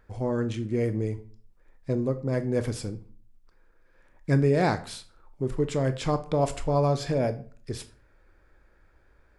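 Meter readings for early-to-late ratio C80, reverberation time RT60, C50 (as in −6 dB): 19.5 dB, 0.45 s, 15.0 dB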